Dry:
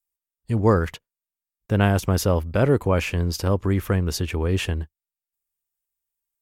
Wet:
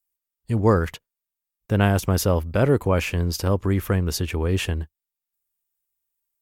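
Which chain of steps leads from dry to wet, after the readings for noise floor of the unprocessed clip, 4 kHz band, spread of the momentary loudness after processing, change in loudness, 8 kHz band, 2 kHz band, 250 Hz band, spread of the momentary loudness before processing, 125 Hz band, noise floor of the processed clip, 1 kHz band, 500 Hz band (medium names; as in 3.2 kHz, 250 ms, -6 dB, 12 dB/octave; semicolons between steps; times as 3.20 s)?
under -85 dBFS, +0.5 dB, 8 LU, 0.0 dB, +1.5 dB, 0.0 dB, 0.0 dB, 8 LU, 0.0 dB, under -85 dBFS, 0.0 dB, 0.0 dB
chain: treble shelf 11 kHz +5.5 dB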